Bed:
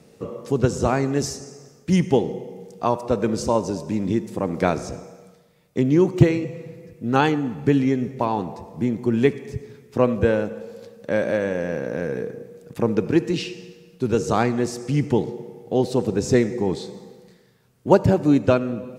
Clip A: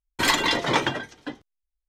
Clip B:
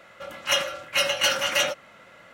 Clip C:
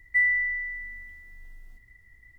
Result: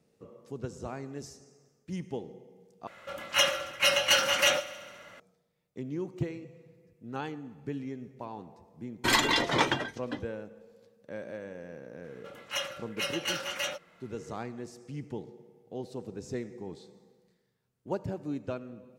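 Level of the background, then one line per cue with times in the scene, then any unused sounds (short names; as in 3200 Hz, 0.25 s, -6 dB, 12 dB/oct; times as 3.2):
bed -18.5 dB
2.87 replace with B -1.5 dB + multi-head echo 69 ms, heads first and second, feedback 61%, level -22 dB
8.85 add A -3.5 dB
12.04 add B -10.5 dB
not used: C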